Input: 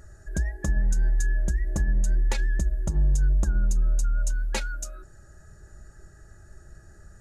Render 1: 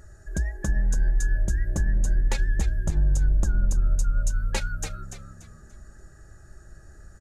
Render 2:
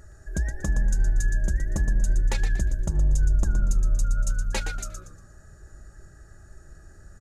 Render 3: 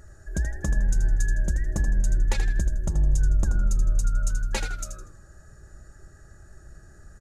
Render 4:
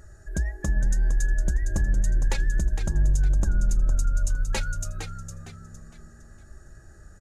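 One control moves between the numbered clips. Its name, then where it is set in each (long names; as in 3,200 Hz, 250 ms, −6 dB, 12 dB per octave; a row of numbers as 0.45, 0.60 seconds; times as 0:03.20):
echo with shifted repeats, delay time: 290, 118, 80, 459 milliseconds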